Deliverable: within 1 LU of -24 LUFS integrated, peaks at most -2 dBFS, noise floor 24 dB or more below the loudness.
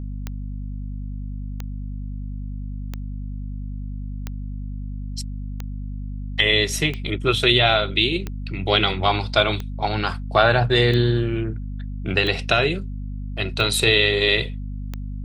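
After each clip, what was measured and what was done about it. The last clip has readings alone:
clicks 12; hum 50 Hz; harmonics up to 250 Hz; hum level -27 dBFS; loudness -20.0 LUFS; peak -2.0 dBFS; loudness target -24.0 LUFS
-> de-click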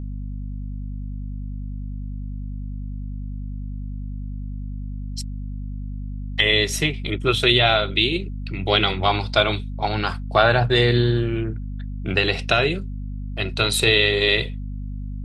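clicks 0; hum 50 Hz; harmonics up to 250 Hz; hum level -27 dBFS
-> notches 50/100/150/200/250 Hz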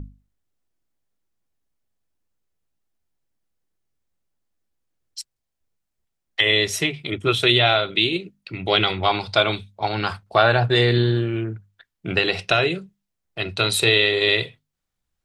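hum none; loudness -19.5 LUFS; peak -2.5 dBFS; loudness target -24.0 LUFS
-> gain -4.5 dB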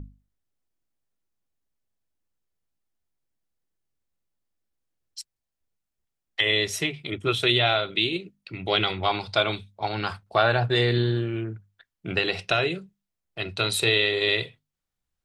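loudness -24.0 LUFS; peak -7.0 dBFS; noise floor -84 dBFS

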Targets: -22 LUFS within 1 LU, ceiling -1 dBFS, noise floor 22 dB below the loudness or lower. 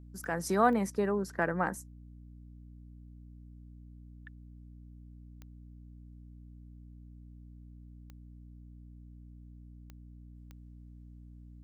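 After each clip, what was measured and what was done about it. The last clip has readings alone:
clicks 6; hum 60 Hz; harmonics up to 300 Hz; hum level -48 dBFS; loudness -31.0 LUFS; peak -11.5 dBFS; loudness target -22.0 LUFS
-> de-click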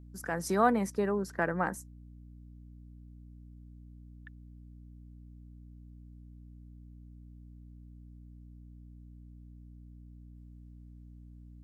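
clicks 0; hum 60 Hz; harmonics up to 300 Hz; hum level -48 dBFS
-> notches 60/120/180/240/300 Hz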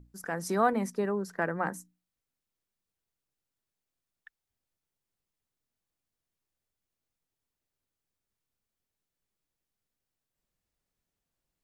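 hum none; loudness -31.0 LUFS; peak -11.5 dBFS; loudness target -22.0 LUFS
-> gain +9 dB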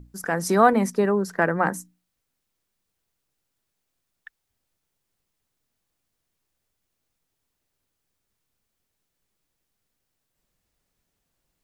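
loudness -22.0 LUFS; peak -2.5 dBFS; noise floor -79 dBFS

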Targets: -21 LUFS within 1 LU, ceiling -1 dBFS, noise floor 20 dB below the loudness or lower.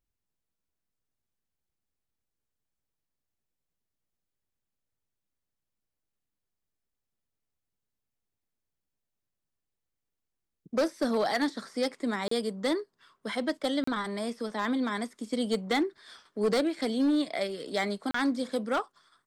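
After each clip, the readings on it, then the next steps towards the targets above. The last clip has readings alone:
clipped 0.5%; flat tops at -21.0 dBFS; dropouts 3; longest dropout 34 ms; loudness -30.5 LUFS; peak -21.0 dBFS; loudness target -21.0 LUFS
-> clip repair -21 dBFS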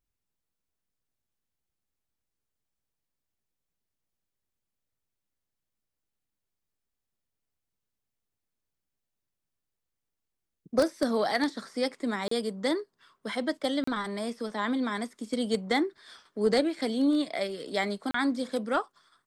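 clipped 0.0%; dropouts 3; longest dropout 34 ms
-> interpolate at 12.28/13.84/18.11, 34 ms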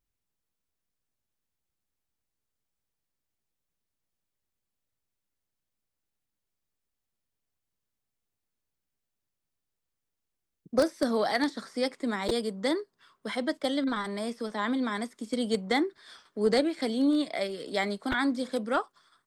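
dropouts 0; loudness -29.5 LUFS; peak -12.0 dBFS; loudness target -21.0 LUFS
-> gain +8.5 dB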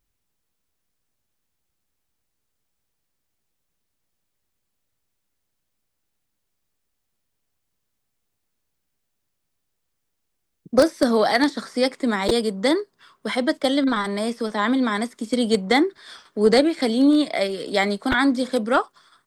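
loudness -21.0 LUFS; peak -3.5 dBFS; noise floor -76 dBFS

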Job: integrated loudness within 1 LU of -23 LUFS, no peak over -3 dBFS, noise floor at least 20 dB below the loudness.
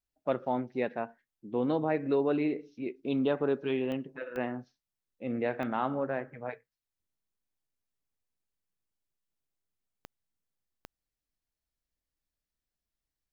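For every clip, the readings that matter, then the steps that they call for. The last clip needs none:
clicks 5; loudness -32.5 LUFS; peak -15.5 dBFS; loudness target -23.0 LUFS
-> de-click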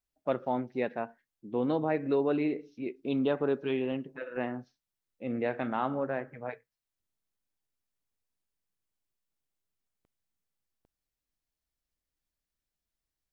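clicks 0; loudness -32.5 LUFS; peak -15.5 dBFS; loudness target -23.0 LUFS
-> gain +9.5 dB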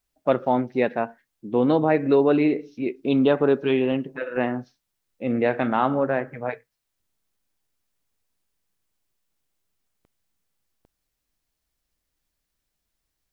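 loudness -23.0 LUFS; peak -6.0 dBFS; noise floor -80 dBFS

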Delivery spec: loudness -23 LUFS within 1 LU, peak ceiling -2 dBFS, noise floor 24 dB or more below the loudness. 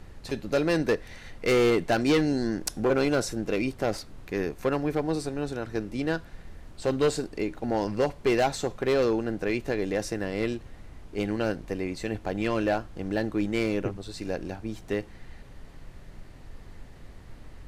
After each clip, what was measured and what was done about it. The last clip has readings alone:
clipped 1.0%; flat tops at -17.5 dBFS; noise floor -47 dBFS; noise floor target -53 dBFS; loudness -28.5 LUFS; peak -17.5 dBFS; loudness target -23.0 LUFS
-> clip repair -17.5 dBFS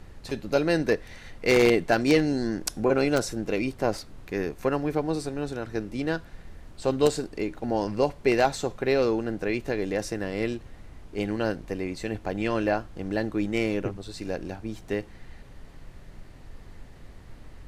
clipped 0.0%; noise floor -47 dBFS; noise floor target -51 dBFS
-> noise print and reduce 6 dB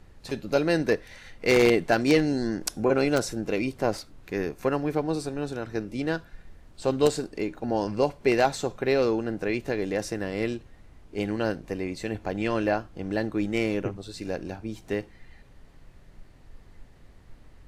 noise floor -53 dBFS; loudness -27.5 LUFS; peak -8.5 dBFS; loudness target -23.0 LUFS
-> gain +4.5 dB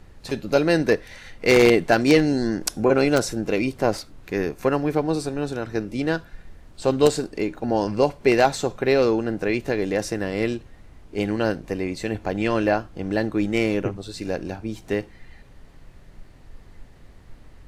loudness -23.0 LUFS; peak -4.0 dBFS; noise floor -48 dBFS

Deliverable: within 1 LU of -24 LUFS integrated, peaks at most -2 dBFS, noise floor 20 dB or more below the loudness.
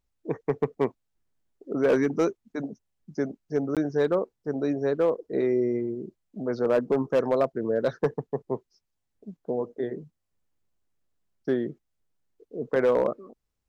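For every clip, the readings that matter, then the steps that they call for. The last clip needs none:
clipped 0.5%; flat tops at -15.5 dBFS; dropouts 1; longest dropout 17 ms; loudness -27.5 LUFS; peak -15.5 dBFS; loudness target -24.0 LUFS
-> clip repair -15.5 dBFS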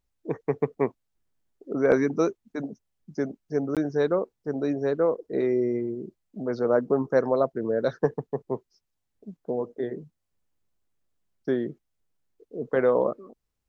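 clipped 0.0%; dropouts 1; longest dropout 17 ms
-> interpolate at 3.75, 17 ms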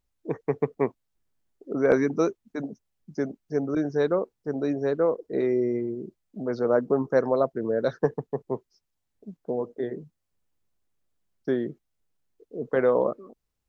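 dropouts 0; loudness -27.0 LUFS; peak -6.5 dBFS; loudness target -24.0 LUFS
-> gain +3 dB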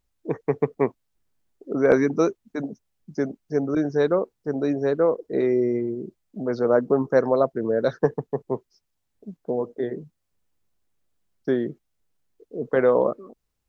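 loudness -24.0 LUFS; peak -3.5 dBFS; noise floor -77 dBFS

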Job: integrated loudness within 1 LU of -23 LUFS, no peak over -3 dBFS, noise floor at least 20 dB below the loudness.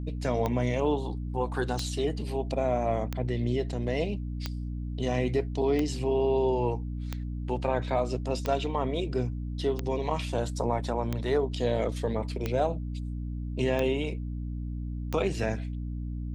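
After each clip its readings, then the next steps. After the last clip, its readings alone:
clicks 12; hum 60 Hz; harmonics up to 300 Hz; hum level -31 dBFS; loudness -30.0 LUFS; peak -14.0 dBFS; loudness target -23.0 LUFS
-> de-click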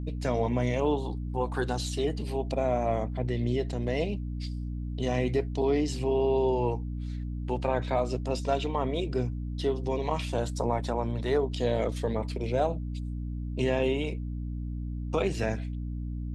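clicks 0; hum 60 Hz; harmonics up to 300 Hz; hum level -31 dBFS
-> de-hum 60 Hz, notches 5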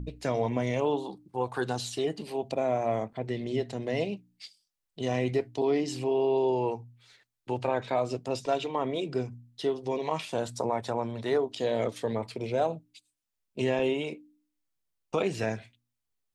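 hum none; loudness -30.5 LUFS; peak -14.5 dBFS; loudness target -23.0 LUFS
-> gain +7.5 dB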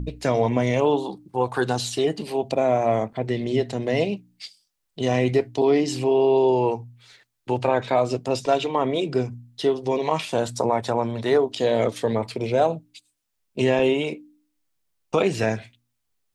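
loudness -23.0 LUFS; peak -7.0 dBFS; noise floor -76 dBFS

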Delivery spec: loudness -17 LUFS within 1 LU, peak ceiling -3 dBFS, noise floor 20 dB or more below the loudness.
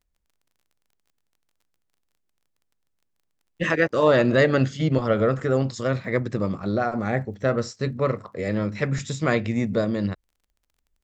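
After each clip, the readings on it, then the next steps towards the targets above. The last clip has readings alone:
ticks 26/s; loudness -23.5 LUFS; peak -5.5 dBFS; loudness target -17.0 LUFS
-> de-click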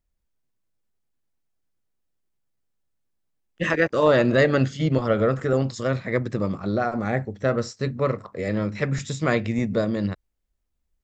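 ticks 0.091/s; loudness -23.5 LUFS; peak -5.5 dBFS; loudness target -17.0 LUFS
-> gain +6.5 dB; limiter -3 dBFS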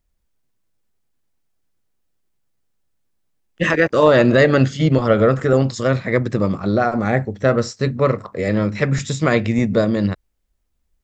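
loudness -17.5 LUFS; peak -3.0 dBFS; noise floor -69 dBFS

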